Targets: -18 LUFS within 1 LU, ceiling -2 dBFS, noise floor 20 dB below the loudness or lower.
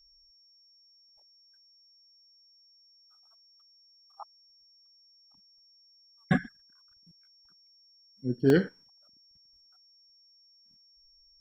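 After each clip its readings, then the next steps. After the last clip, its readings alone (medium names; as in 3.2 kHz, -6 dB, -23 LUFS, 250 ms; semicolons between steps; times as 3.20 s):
dropouts 1; longest dropout 1.3 ms; steady tone 5.5 kHz; tone level -59 dBFS; loudness -28.0 LUFS; peak level -10.5 dBFS; loudness target -18.0 LUFS
-> interpolate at 8.50 s, 1.3 ms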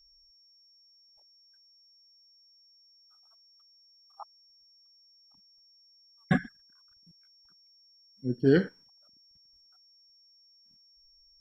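dropouts 0; steady tone 5.5 kHz; tone level -59 dBFS
-> band-stop 5.5 kHz, Q 30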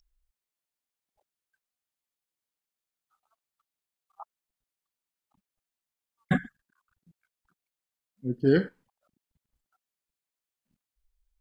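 steady tone not found; loudness -28.0 LUFS; peak level -10.5 dBFS; loudness target -18.0 LUFS
-> trim +10 dB; peak limiter -2 dBFS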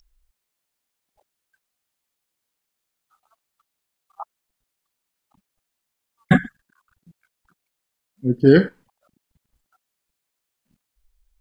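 loudness -18.5 LUFS; peak level -2.0 dBFS; noise floor -81 dBFS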